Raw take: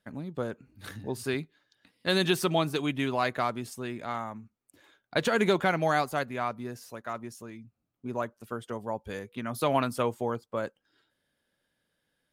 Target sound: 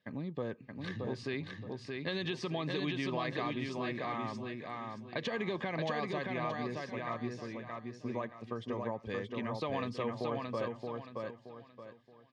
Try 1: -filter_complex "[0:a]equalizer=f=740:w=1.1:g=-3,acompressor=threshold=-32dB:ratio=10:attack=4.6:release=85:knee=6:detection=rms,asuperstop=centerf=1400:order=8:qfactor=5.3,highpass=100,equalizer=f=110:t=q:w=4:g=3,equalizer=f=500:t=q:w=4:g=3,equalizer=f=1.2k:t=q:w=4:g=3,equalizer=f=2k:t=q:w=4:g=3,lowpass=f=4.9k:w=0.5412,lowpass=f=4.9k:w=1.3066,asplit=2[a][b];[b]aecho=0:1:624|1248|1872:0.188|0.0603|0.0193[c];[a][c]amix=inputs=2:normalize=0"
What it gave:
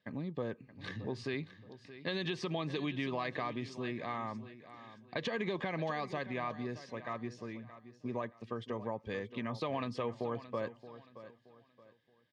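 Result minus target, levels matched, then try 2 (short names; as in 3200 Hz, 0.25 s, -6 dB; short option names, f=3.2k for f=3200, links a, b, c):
echo-to-direct -11 dB
-filter_complex "[0:a]equalizer=f=740:w=1.1:g=-3,acompressor=threshold=-32dB:ratio=10:attack=4.6:release=85:knee=6:detection=rms,asuperstop=centerf=1400:order=8:qfactor=5.3,highpass=100,equalizer=f=110:t=q:w=4:g=3,equalizer=f=500:t=q:w=4:g=3,equalizer=f=1.2k:t=q:w=4:g=3,equalizer=f=2k:t=q:w=4:g=3,lowpass=f=4.9k:w=0.5412,lowpass=f=4.9k:w=1.3066,asplit=2[a][b];[b]aecho=0:1:624|1248|1872|2496:0.668|0.214|0.0684|0.0219[c];[a][c]amix=inputs=2:normalize=0"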